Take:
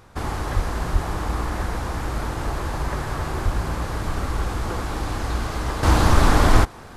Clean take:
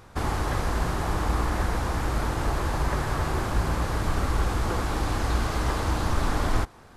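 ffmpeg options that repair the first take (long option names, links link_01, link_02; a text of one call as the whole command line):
ffmpeg -i in.wav -filter_complex "[0:a]asplit=3[link_01][link_02][link_03];[link_01]afade=type=out:start_time=0.55:duration=0.02[link_04];[link_02]highpass=frequency=140:width=0.5412,highpass=frequency=140:width=1.3066,afade=type=in:start_time=0.55:duration=0.02,afade=type=out:start_time=0.67:duration=0.02[link_05];[link_03]afade=type=in:start_time=0.67:duration=0.02[link_06];[link_04][link_05][link_06]amix=inputs=3:normalize=0,asplit=3[link_07][link_08][link_09];[link_07]afade=type=out:start_time=0.92:duration=0.02[link_10];[link_08]highpass=frequency=140:width=0.5412,highpass=frequency=140:width=1.3066,afade=type=in:start_time=0.92:duration=0.02,afade=type=out:start_time=1.04:duration=0.02[link_11];[link_09]afade=type=in:start_time=1.04:duration=0.02[link_12];[link_10][link_11][link_12]amix=inputs=3:normalize=0,asplit=3[link_13][link_14][link_15];[link_13]afade=type=out:start_time=3.44:duration=0.02[link_16];[link_14]highpass=frequency=140:width=0.5412,highpass=frequency=140:width=1.3066,afade=type=in:start_time=3.44:duration=0.02,afade=type=out:start_time=3.56:duration=0.02[link_17];[link_15]afade=type=in:start_time=3.56:duration=0.02[link_18];[link_16][link_17][link_18]amix=inputs=3:normalize=0,asetnsamples=nb_out_samples=441:pad=0,asendcmd='5.83 volume volume -9.5dB',volume=0dB" out.wav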